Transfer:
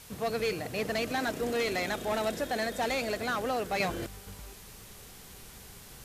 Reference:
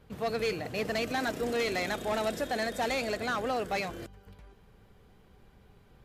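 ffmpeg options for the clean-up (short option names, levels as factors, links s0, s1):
-af "afwtdn=0.0032,asetnsamples=n=441:p=0,asendcmd='3.8 volume volume -5.5dB',volume=1"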